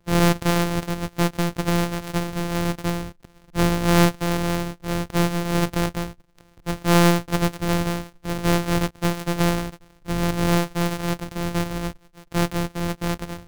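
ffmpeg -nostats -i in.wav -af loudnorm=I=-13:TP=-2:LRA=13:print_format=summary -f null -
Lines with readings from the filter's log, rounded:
Input Integrated:    -24.0 LUFS
Input True Peak:      -3.2 dBTP
Input LRA:             3.8 LU
Input Threshold:     -34.2 LUFS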